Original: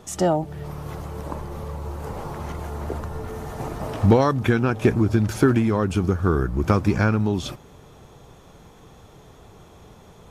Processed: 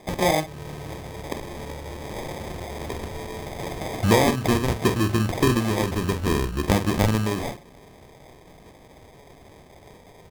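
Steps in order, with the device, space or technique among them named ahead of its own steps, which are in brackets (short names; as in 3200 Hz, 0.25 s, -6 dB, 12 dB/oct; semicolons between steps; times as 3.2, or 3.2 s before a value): tilt shelf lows -5 dB, about 670 Hz; doubler 46 ms -9 dB; crushed at another speed (playback speed 0.8×; sample-and-hold 39×; playback speed 1.25×)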